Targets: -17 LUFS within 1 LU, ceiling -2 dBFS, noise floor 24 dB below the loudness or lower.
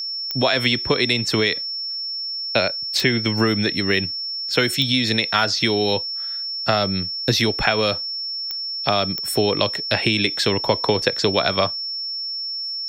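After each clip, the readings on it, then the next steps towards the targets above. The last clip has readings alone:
clicks 5; steady tone 5400 Hz; tone level -25 dBFS; loudness -20.0 LUFS; peak -3.5 dBFS; loudness target -17.0 LUFS
-> de-click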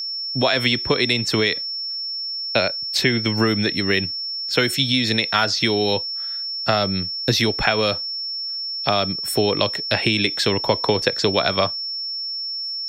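clicks 0; steady tone 5400 Hz; tone level -25 dBFS
-> notch 5400 Hz, Q 30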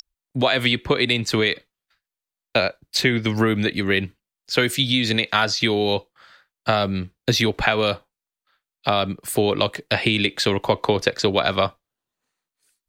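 steady tone none; loudness -21.0 LUFS; peak -4.0 dBFS; loudness target -17.0 LUFS
-> gain +4 dB; limiter -2 dBFS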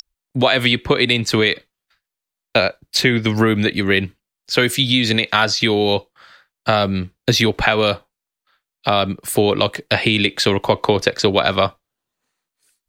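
loudness -17.5 LUFS; peak -2.0 dBFS; noise floor -85 dBFS

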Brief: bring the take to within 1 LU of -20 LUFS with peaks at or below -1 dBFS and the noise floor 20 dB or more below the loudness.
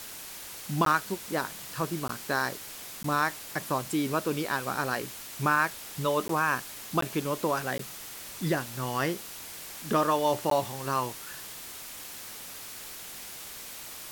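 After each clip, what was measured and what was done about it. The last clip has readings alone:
dropouts 7; longest dropout 13 ms; noise floor -43 dBFS; noise floor target -51 dBFS; loudness -31.0 LUFS; peak -12.0 dBFS; loudness target -20.0 LUFS
-> interpolate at 0.85/2.08/3.03/6.28/7.01/7.78/10.5, 13 ms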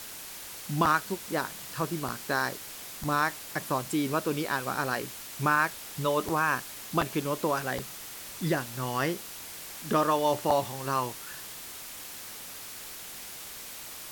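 dropouts 0; noise floor -43 dBFS; noise floor target -51 dBFS
-> noise print and reduce 8 dB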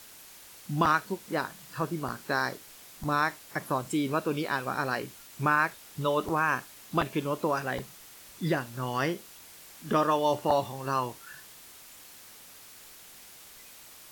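noise floor -51 dBFS; loudness -30.0 LUFS; peak -12.0 dBFS; loudness target -20.0 LUFS
-> gain +10 dB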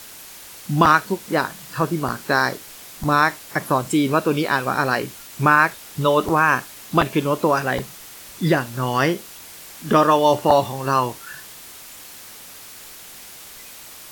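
loudness -20.0 LUFS; peak -2.0 dBFS; noise floor -41 dBFS

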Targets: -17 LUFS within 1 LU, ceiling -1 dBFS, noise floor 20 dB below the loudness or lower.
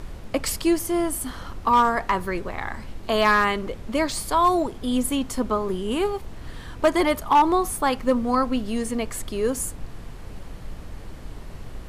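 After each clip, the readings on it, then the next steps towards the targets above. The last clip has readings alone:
clipped 0.3%; flat tops at -11.0 dBFS; noise floor -39 dBFS; noise floor target -44 dBFS; loudness -23.5 LUFS; peak -11.0 dBFS; loudness target -17.0 LUFS
-> clip repair -11 dBFS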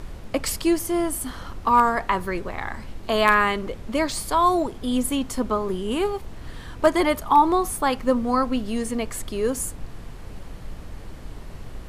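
clipped 0.0%; noise floor -39 dBFS; noise floor target -43 dBFS
-> noise print and reduce 6 dB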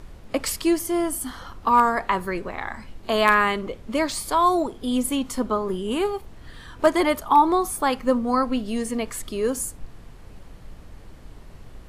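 noise floor -45 dBFS; loudness -23.0 LUFS; peak -2.0 dBFS; loudness target -17.0 LUFS
-> gain +6 dB; limiter -1 dBFS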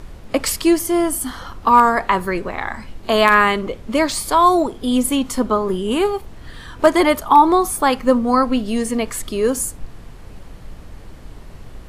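loudness -17.5 LUFS; peak -1.0 dBFS; noise floor -39 dBFS

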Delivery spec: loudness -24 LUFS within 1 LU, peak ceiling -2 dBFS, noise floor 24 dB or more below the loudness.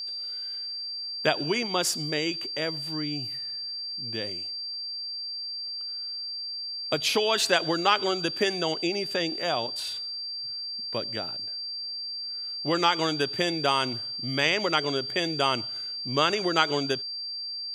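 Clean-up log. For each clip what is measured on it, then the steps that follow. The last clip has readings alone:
steady tone 4700 Hz; tone level -32 dBFS; loudness -27.5 LUFS; peak -6.0 dBFS; loudness target -24.0 LUFS
-> notch 4700 Hz, Q 30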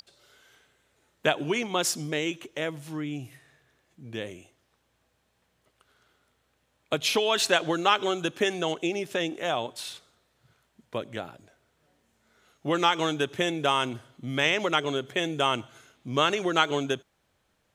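steady tone none; loudness -27.5 LUFS; peak -6.0 dBFS; loudness target -24.0 LUFS
-> gain +3.5 dB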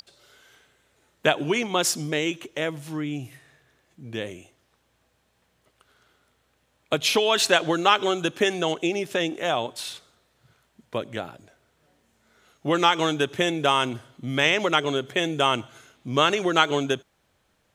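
loudness -24.0 LUFS; peak -2.5 dBFS; noise floor -69 dBFS

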